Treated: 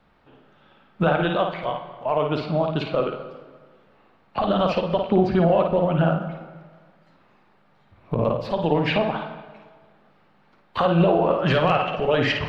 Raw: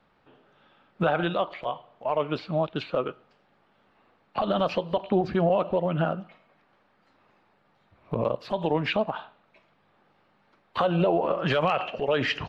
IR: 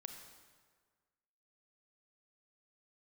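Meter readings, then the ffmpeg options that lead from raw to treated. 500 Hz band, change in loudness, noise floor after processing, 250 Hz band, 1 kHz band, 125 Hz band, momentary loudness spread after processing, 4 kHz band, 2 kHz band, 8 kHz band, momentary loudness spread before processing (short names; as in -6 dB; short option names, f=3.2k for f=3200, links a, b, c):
+4.5 dB, +5.0 dB, -59 dBFS, +6.0 dB, +4.5 dB, +7.0 dB, 12 LU, +4.0 dB, +4.0 dB, n/a, 11 LU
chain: -filter_complex "[0:a]lowshelf=f=120:g=7,asplit=2[a][b];[1:a]atrim=start_sample=2205,lowpass=4.9k,adelay=54[c];[b][c]afir=irnorm=-1:irlink=0,volume=1dB[d];[a][d]amix=inputs=2:normalize=0,volume=2.5dB"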